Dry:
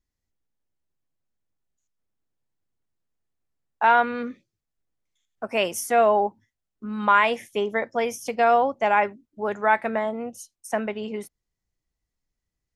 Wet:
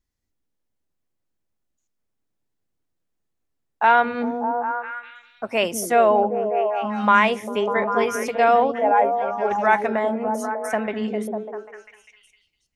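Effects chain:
0:08.72–0:09.51: expanding power law on the bin magnitudes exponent 1.8
echo through a band-pass that steps 199 ms, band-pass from 250 Hz, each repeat 0.7 octaves, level 0 dB
level +2 dB

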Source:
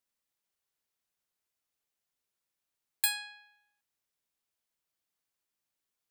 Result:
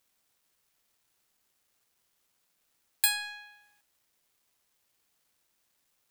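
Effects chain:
mu-law and A-law mismatch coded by mu
level +2.5 dB

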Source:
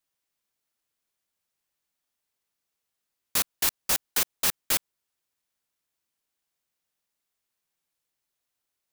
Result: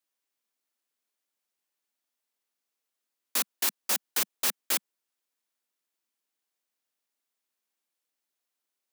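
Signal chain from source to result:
Butterworth high-pass 200 Hz 48 dB per octave
level −2.5 dB

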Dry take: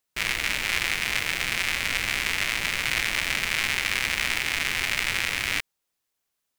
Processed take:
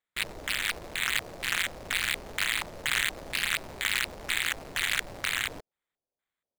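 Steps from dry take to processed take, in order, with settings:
auto-filter low-pass square 2.1 Hz 610–2,100 Hz
bad sample-rate conversion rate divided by 8×, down filtered, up hold
highs frequency-modulated by the lows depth 0.9 ms
level −6 dB

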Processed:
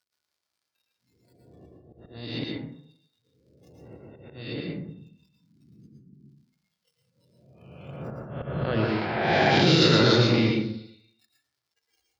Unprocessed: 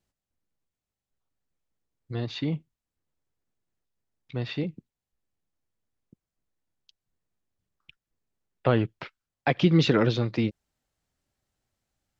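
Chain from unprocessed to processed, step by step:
peak hold with a rise ahead of every peak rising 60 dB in 1.56 s
0:04.60–0:08.66: parametric band 150 Hz +14.5 dB 1.7 octaves
low-pass that shuts in the quiet parts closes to 1,100 Hz, open at −16 dBFS
delay with a high-pass on its return 136 ms, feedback 63%, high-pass 3,000 Hz, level −19 dB
brickwall limiter −13 dBFS, peak gain reduction 8.5 dB
surface crackle 150 per second −43 dBFS
high-pass filter 58 Hz 24 dB per octave
parametric band 4,600 Hz +9.5 dB 0.68 octaves
mains-hum notches 50/100/150/200/250/300/350/400/450 Hz
volume swells 468 ms
noise reduction from a noise print of the clip's start 23 dB
dense smooth reverb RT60 0.64 s, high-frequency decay 0.4×, pre-delay 100 ms, DRR −1 dB

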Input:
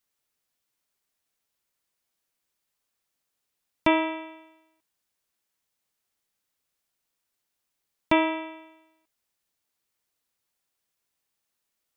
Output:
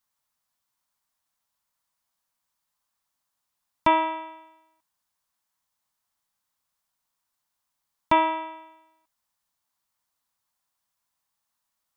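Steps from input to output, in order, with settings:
graphic EQ with 15 bands 400 Hz −11 dB, 1,000 Hz +8 dB, 2,500 Hz −4 dB

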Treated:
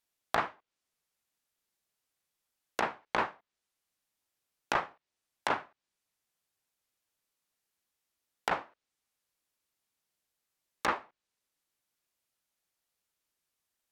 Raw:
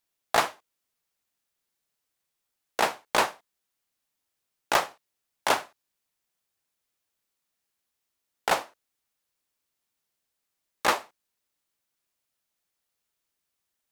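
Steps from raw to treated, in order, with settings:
treble cut that deepens with the level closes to 1,700 Hz, closed at −26.5 dBFS
dynamic equaliser 600 Hz, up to −7 dB, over −37 dBFS, Q 0.91
level −2 dB

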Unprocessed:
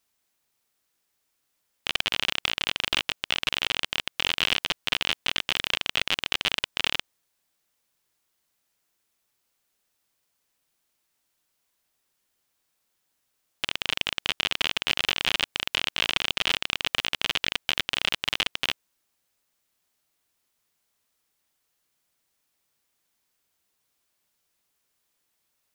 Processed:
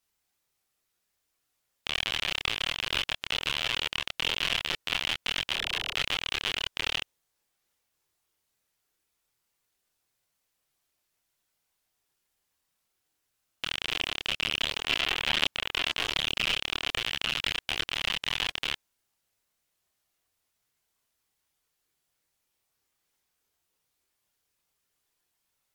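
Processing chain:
0:05.51–0:05.92: all-pass dispersion lows, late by 41 ms, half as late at 400 Hz
multi-voice chorus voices 6, 0.54 Hz, delay 27 ms, depth 1.5 ms
AAC 128 kbit/s 48,000 Hz

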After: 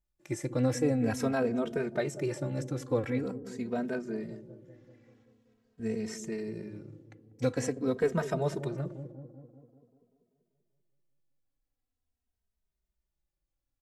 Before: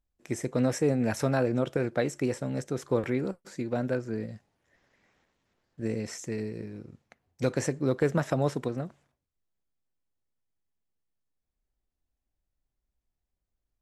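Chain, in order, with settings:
delay with a low-pass on its return 194 ms, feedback 60%, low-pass 520 Hz, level −10 dB
barber-pole flanger 2.9 ms −0.46 Hz

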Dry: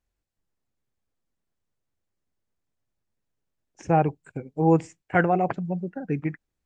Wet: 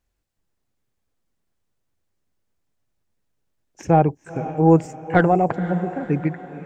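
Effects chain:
stylus tracing distortion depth 0.033 ms
feedback delay with all-pass diffusion 495 ms, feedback 43%, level −14 dB
dynamic equaliser 2,600 Hz, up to −6 dB, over −40 dBFS, Q 0.71
level +5.5 dB

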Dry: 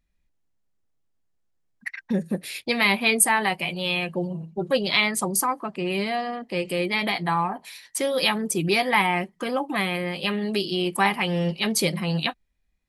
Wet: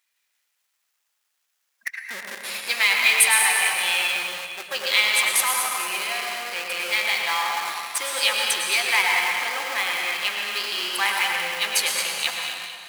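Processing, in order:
mu-law and A-law mismatch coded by mu
dense smooth reverb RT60 2.2 s, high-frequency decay 0.8×, pre-delay 90 ms, DRR 0 dB
in parallel at −3.5 dB: comparator with hysteresis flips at −22 dBFS
on the sum: high-pass filter 1,400 Hz 12 dB per octave
delay that swaps between a low-pass and a high-pass 110 ms, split 2,100 Hz, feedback 68%, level −7.5 dB

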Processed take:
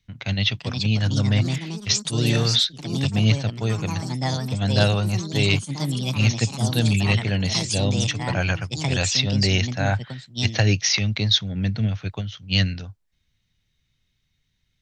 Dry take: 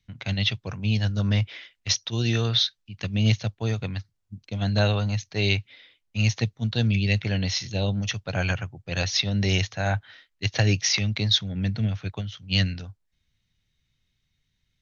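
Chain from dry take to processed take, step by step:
delay with pitch and tempo change per echo 438 ms, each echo +4 semitones, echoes 3, each echo −6 dB
level +2.5 dB

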